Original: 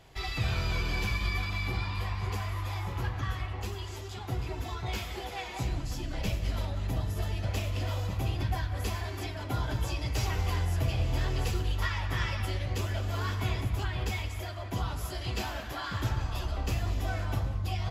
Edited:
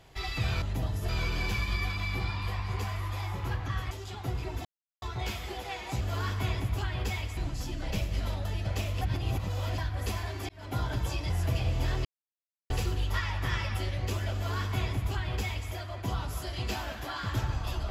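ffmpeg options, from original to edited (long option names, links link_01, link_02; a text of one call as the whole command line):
ffmpeg -i in.wav -filter_complex "[0:a]asplit=13[link_01][link_02][link_03][link_04][link_05][link_06][link_07][link_08][link_09][link_10][link_11][link_12][link_13];[link_01]atrim=end=0.622[link_14];[link_02]atrim=start=6.758:end=7.232[link_15];[link_03]atrim=start=0.618:end=3.442[link_16];[link_04]atrim=start=3.948:end=4.69,asetpts=PTS-STARTPTS,afade=type=out:start_time=0.738:duration=0.004:curve=hsin,apad=pad_dur=0.37[link_17];[link_05]atrim=start=4.69:end=5.682,asetpts=PTS-STARTPTS,afade=type=in:duration=0.004:curve=hsin[link_18];[link_06]atrim=start=13.018:end=14.382[link_19];[link_07]atrim=start=5.678:end=6.762[link_20];[link_08]atrim=start=7.228:end=7.792[link_21];[link_09]atrim=start=7.788:end=8.562,asetpts=PTS-STARTPTS,areverse[link_22];[link_10]atrim=start=8.558:end=9.27,asetpts=PTS-STARTPTS,afade=type=out:start_time=0.708:duration=0.004:curve=hsin[link_23];[link_11]atrim=start=9.27:end=10.082,asetpts=PTS-STARTPTS,afade=type=in:duration=0.27[link_24];[link_12]atrim=start=10.628:end=11.38,asetpts=PTS-STARTPTS,afade=type=out:start_time=0.748:duration=0.004:curve=hsin,apad=pad_dur=0.65[link_25];[link_13]atrim=start=11.38,asetpts=PTS-STARTPTS,afade=type=in:duration=0.004:curve=hsin[link_26];[link_14][link_15]acrossfade=duration=0.004:curve1=hsin:curve2=hsin[link_27];[link_27][link_16]acrossfade=duration=0.004:curve1=hsin:curve2=hsin[link_28];[link_17][link_18]concat=n=2:v=0:a=1[link_29];[link_28][link_29]acrossfade=duration=0.004:curve1=hsin:curve2=hsin[link_30];[link_30][link_19]acrossfade=duration=0.004:curve1=hsin:curve2=hsin[link_31];[link_31][link_20]acrossfade=duration=0.004:curve1=hsin:curve2=hsin[link_32];[link_32][link_21]acrossfade=duration=0.004:curve1=hsin:curve2=hsin[link_33];[link_33][link_22]acrossfade=duration=0.004:curve1=hsin:curve2=hsin[link_34];[link_23][link_24]concat=n=2:v=0:a=1[link_35];[link_34][link_35]acrossfade=duration=0.004:curve1=hsin:curve2=hsin[link_36];[link_25][link_26]concat=n=2:v=0:a=1[link_37];[link_36][link_37]acrossfade=duration=0.004:curve1=hsin:curve2=hsin" out.wav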